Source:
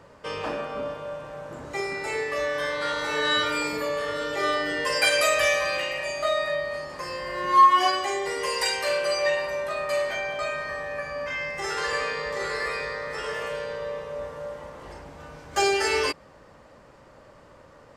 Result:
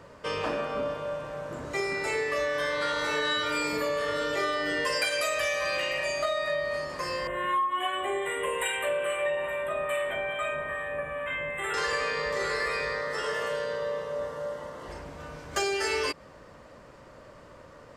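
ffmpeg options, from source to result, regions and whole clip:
ffmpeg -i in.wav -filter_complex "[0:a]asettb=1/sr,asplit=3[link_01][link_02][link_03];[link_01]atrim=end=7.274[link_04];[link_02]atrim=start=7.27:end=11.74,asetpts=PTS-STARTPTS,afade=type=in:duration=0.004:curve=qsin,afade=type=out:start_time=4.466:duration=0.004:curve=qsin,acrossover=split=980[link_05][link_06];[link_05]aeval=exprs='val(0)*(1-0.5/2+0.5/2*cos(2*PI*2.4*n/s))':channel_layout=same[link_07];[link_06]aeval=exprs='val(0)*(1-0.5/2-0.5/2*cos(2*PI*2.4*n/s))':channel_layout=same[link_08];[link_07][link_08]amix=inputs=2:normalize=0,asuperstop=centerf=5300:order=12:qfactor=1.4[link_09];[link_03]atrim=start=11.736[link_10];[link_04][link_09]acrossfade=duration=0.004:curve1=hsin:curve2=qsin[link_11];[link_11][link_10]acrossfade=duration=0.004:curve1=qsin:curve2=hsin,asettb=1/sr,asplit=3[link_12][link_13][link_14];[link_12]atrim=end=13.014[link_15];[link_13]atrim=start=13.01:end=14.89,asetpts=PTS-STARTPTS,afade=type=in:duration=0.004:curve=qsin,afade=type=out:start_time=1.876:duration=0.004:curve=qsin,highpass=frequency=130:poles=1,bandreject=frequency=2400:width=5.6[link_16];[link_14]atrim=start=14.886[link_17];[link_15][link_16]acrossfade=duration=0.004:curve1=hsin:curve2=qsin[link_18];[link_18][link_17]acrossfade=duration=0.004:curve1=qsin:curve2=hsin,bandreject=frequency=820:width=12,acompressor=threshold=-26dB:ratio=12,volume=1.5dB" out.wav

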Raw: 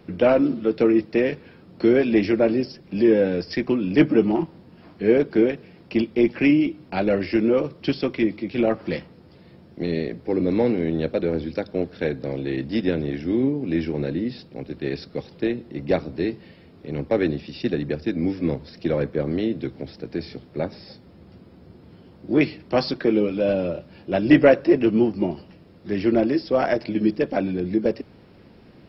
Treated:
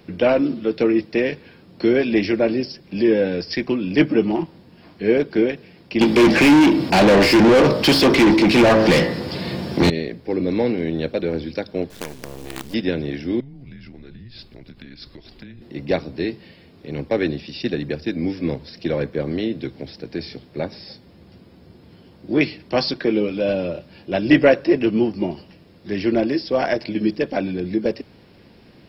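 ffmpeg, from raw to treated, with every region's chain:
ffmpeg -i in.wav -filter_complex "[0:a]asettb=1/sr,asplit=3[link_01][link_02][link_03];[link_01]atrim=end=6.014[link_04];[link_02]atrim=start=6.01:end=9.9,asetpts=PTS-STARTPTS,afade=type=in:duration=0.004:curve=qsin,afade=type=out:start_time=3.886:duration=0.004:curve=qsin,bass=frequency=250:gain=8,treble=frequency=4000:gain=13,bandreject=frequency=54.88:width_type=h:width=4,bandreject=frequency=109.76:width_type=h:width=4,bandreject=frequency=164.64:width_type=h:width=4,bandreject=frequency=219.52:width_type=h:width=4,bandreject=frequency=274.4:width_type=h:width=4,bandreject=frequency=329.28:width_type=h:width=4,bandreject=frequency=384.16:width_type=h:width=4,bandreject=frequency=439.04:width_type=h:width=4,bandreject=frequency=493.92:width_type=h:width=4,bandreject=frequency=548.8:width_type=h:width=4,bandreject=frequency=603.68:width_type=h:width=4,bandreject=frequency=658.56:width_type=h:width=4,bandreject=frequency=713.44:width_type=h:width=4,bandreject=frequency=768.32:width_type=h:width=4,bandreject=frequency=823.2:width_type=h:width=4,bandreject=frequency=878.08:width_type=h:width=4,bandreject=frequency=932.96:width_type=h:width=4,bandreject=frequency=987.84:width_type=h:width=4,bandreject=frequency=1042.72:width_type=h:width=4,bandreject=frequency=1097.6:width_type=h:width=4,bandreject=frequency=1152.48:width_type=h:width=4,bandreject=frequency=1207.36:width_type=h:width=4,bandreject=frequency=1262.24:width_type=h:width=4,bandreject=frequency=1317.12:width_type=h:width=4,bandreject=frequency=1372:width_type=h:width=4,bandreject=frequency=1426.88:width_type=h:width=4,bandreject=frequency=1481.76:width_type=h:width=4,bandreject=frequency=1536.64:width_type=h:width=4,bandreject=frequency=1591.52:width_type=h:width=4,bandreject=frequency=1646.4:width_type=h:width=4,bandreject=frequency=1701.28:width_type=h:width=4,bandreject=frequency=1756.16:width_type=h:width=4,bandreject=frequency=1811.04:width_type=h:width=4,bandreject=frequency=1865.92:width_type=h:width=4,bandreject=frequency=1920.8:width_type=h:width=4,bandreject=frequency=1975.68:width_type=h:width=4,bandreject=frequency=2030.56:width_type=h:width=4,asplit=2[link_05][link_06];[link_06]highpass=frequency=720:poles=1,volume=34dB,asoftclip=type=tanh:threshold=-5dB[link_07];[link_05][link_07]amix=inputs=2:normalize=0,lowpass=frequency=1100:poles=1,volume=-6dB[link_08];[link_03]atrim=start=9.896[link_09];[link_04][link_08]acrossfade=duration=0.004:curve1=hsin:curve2=qsin[link_10];[link_10][link_09]acrossfade=duration=0.004:curve1=qsin:curve2=hsin,asettb=1/sr,asplit=3[link_11][link_12][link_13];[link_11]atrim=end=11.904[link_14];[link_12]atrim=start=11.9:end=12.74,asetpts=PTS-STARTPTS,afade=type=in:duration=0.004:curve=qsin,afade=type=out:start_time=0.836:duration=0.004:curve=qsin,lowshelf=frequency=490:gain=5.5,acompressor=threshold=-32dB:ratio=2.5:attack=3.2:release=140:knee=1:detection=peak,acrusher=bits=5:dc=4:mix=0:aa=0.000001[link_15];[link_13]atrim=start=12.736[link_16];[link_14][link_15]acrossfade=duration=0.004:curve1=hsin:curve2=qsin[link_17];[link_17][link_16]acrossfade=duration=0.004:curve1=qsin:curve2=hsin,asettb=1/sr,asplit=3[link_18][link_19][link_20];[link_18]atrim=end=13.404[link_21];[link_19]atrim=start=13.4:end=15.62,asetpts=PTS-STARTPTS,afade=type=in:duration=0.004:curve=qsin,afade=type=out:start_time=2.216:duration=0.004:curve=qsin,afreqshift=-130,acompressor=threshold=-37dB:ratio=8:attack=3.2:release=140:knee=1:detection=peak[link_22];[link_20]atrim=start=15.616[link_23];[link_21][link_22]acrossfade=duration=0.004:curve1=hsin:curve2=qsin[link_24];[link_24][link_23]acrossfade=duration=0.004:curve1=qsin:curve2=hsin,highshelf=frequency=2200:gain=7.5,bandreject=frequency=1300:width=16" out.wav

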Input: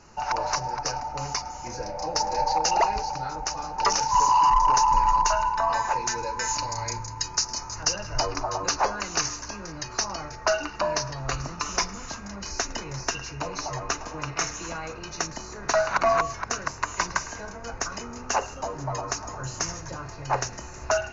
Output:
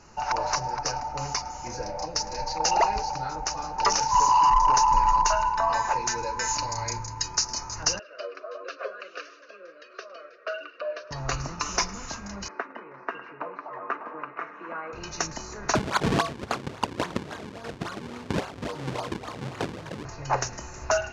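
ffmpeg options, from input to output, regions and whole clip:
ffmpeg -i in.wav -filter_complex "[0:a]asettb=1/sr,asplit=3[link_01][link_02][link_03];[link_01]atrim=end=2.054[link_04];[link_02]atrim=start=2.05:end=2.6,asetpts=PTS-STARTPTS,afade=type=in:duration=0.004:curve=qsin,afade=type=out:start_time=0.546:duration=0.004:curve=qsin,equalizer=frequency=650:width=0.55:gain=-6.5,bandreject=frequency=820:width=7.5[link_05];[link_03]atrim=start=2.596[link_06];[link_04][link_05]acrossfade=duration=0.004:curve1=hsin:curve2=qsin[link_07];[link_07][link_06]acrossfade=duration=0.004:curve1=qsin:curve2=hsin,asettb=1/sr,asplit=3[link_08][link_09][link_10];[link_08]atrim=end=7.994[link_11];[link_09]atrim=start=7.99:end=11.11,asetpts=PTS-STARTPTS,afade=type=in:duration=0.004:curve=qsin,afade=type=out:start_time=3.116:duration=0.004:curve=qsin,flanger=delay=2.5:depth=3.5:regen=46:speed=1.5:shape=triangular,asuperstop=centerf=880:order=4:qfactor=1.5,highpass=frequency=440:width=0.5412,highpass=frequency=440:width=1.3066,equalizer=frequency=530:width_type=q:width=4:gain=7,equalizer=frequency=780:width_type=q:width=4:gain=-6,equalizer=frequency=2000:width_type=q:width=4:gain=-10,lowpass=frequency=3100:width=0.5412,lowpass=frequency=3100:width=1.3066[link_12];[link_10]atrim=start=11.106[link_13];[link_11][link_12]acrossfade=duration=0.004:curve1=hsin:curve2=qsin[link_14];[link_14][link_13]acrossfade=duration=0.004:curve1=qsin:curve2=hsin,asettb=1/sr,asplit=3[link_15][link_16][link_17];[link_15]atrim=end=12.484[link_18];[link_16]atrim=start=12.48:end=14.93,asetpts=PTS-STARTPTS,afade=type=in:duration=0.004:curve=qsin,afade=type=out:start_time=2.446:duration=0.004:curve=qsin,highpass=frequency=240:width=0.5412,highpass=frequency=240:width=1.3066,equalizer=frequency=300:width_type=q:width=4:gain=-3,equalizer=frequency=780:width_type=q:width=4:gain=-4,equalizer=frequency=1200:width_type=q:width=4:gain=4,lowpass=frequency=2000:width=0.5412,lowpass=frequency=2000:width=1.3066,tremolo=f=1.3:d=0.44[link_19];[link_17]atrim=start=14.926[link_20];[link_18][link_19]acrossfade=duration=0.004:curve1=hsin:curve2=qsin[link_21];[link_21][link_20]acrossfade=duration=0.004:curve1=qsin:curve2=hsin,asettb=1/sr,asplit=3[link_22][link_23][link_24];[link_22]atrim=end=15.754[link_25];[link_23]atrim=start=15.75:end=20.05,asetpts=PTS-STARTPTS,afade=type=in:duration=0.004:curve=qsin,afade=type=out:start_time=4.296:duration=0.004:curve=qsin,acrusher=samples=39:mix=1:aa=0.000001:lfo=1:lforange=62.4:lforate=3.6,highpass=110,lowpass=6300[link_26];[link_24]atrim=start=20.046[link_27];[link_25][link_26]acrossfade=duration=0.004:curve1=hsin:curve2=qsin[link_28];[link_28][link_27]acrossfade=duration=0.004:curve1=qsin:curve2=hsin" out.wav

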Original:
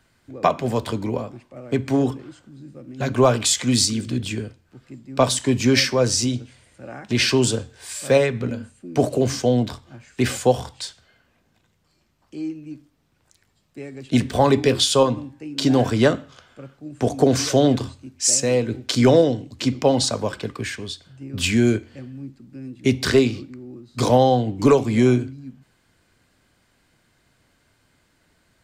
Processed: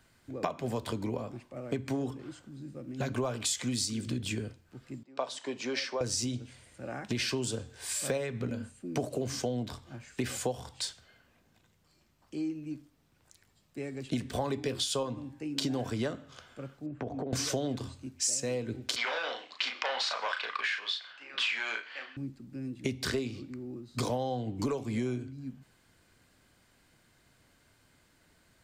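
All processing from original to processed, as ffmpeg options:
ffmpeg -i in.wav -filter_complex "[0:a]asettb=1/sr,asplit=3[link_01][link_02][link_03];[link_01]atrim=end=5.034[link_04];[link_02]atrim=start=5.03:end=6.01,asetpts=PTS-STARTPTS,afade=type=in:duration=0.004:curve=qsin,afade=type=out:start_time=0.976:duration=0.004:curve=qsin,highpass=630,lowpass=3400,equalizer=frequency=2000:width_type=o:width=2.1:gain=-8[link_05];[link_03]atrim=start=6.006[link_06];[link_04][link_05]acrossfade=duration=0.004:curve1=hsin:curve2=qsin[link_07];[link_07][link_06]acrossfade=duration=0.004:curve1=qsin:curve2=hsin,asettb=1/sr,asplit=3[link_08][link_09][link_10];[link_08]atrim=end=16.864[link_11];[link_09]atrim=start=16.86:end=17.33,asetpts=PTS-STARTPTS,afade=type=in:duration=0.004:curve=qsin,afade=type=out:start_time=0.466:duration=0.004:curve=qsin,lowpass=1900,acompressor=threshold=-29dB:ratio=10:attack=3.2:release=140:knee=1:detection=peak[link_12];[link_10]atrim=start=17.326[link_13];[link_11][link_12]acrossfade=duration=0.004:curve1=hsin:curve2=qsin[link_14];[link_14][link_13]acrossfade=duration=0.004:curve1=qsin:curve2=hsin,asettb=1/sr,asplit=3[link_15][link_16][link_17];[link_15]atrim=end=18.964[link_18];[link_16]atrim=start=18.96:end=22.17,asetpts=PTS-STARTPTS,afade=type=in:duration=0.004:curve=qsin,afade=type=out:start_time=3.206:duration=0.004:curve=qsin,asplit=2[link_19][link_20];[link_20]highpass=frequency=720:poles=1,volume=20dB,asoftclip=type=tanh:threshold=-4.5dB[link_21];[link_19][link_21]amix=inputs=2:normalize=0,lowpass=frequency=3200:poles=1,volume=-6dB,asuperpass=centerf=2100:order=4:qfactor=0.66,asplit=2[link_22][link_23];[link_23]adelay=35,volume=-5dB[link_24];[link_22][link_24]amix=inputs=2:normalize=0,atrim=end_sample=141561[link_25];[link_17]atrim=start=22.166[link_26];[link_18][link_25]acrossfade=duration=0.004:curve1=hsin:curve2=qsin[link_27];[link_27][link_26]acrossfade=duration=0.004:curve1=qsin:curve2=hsin,acompressor=threshold=-27dB:ratio=6,highshelf=frequency=8400:gain=4,volume=-3dB" out.wav

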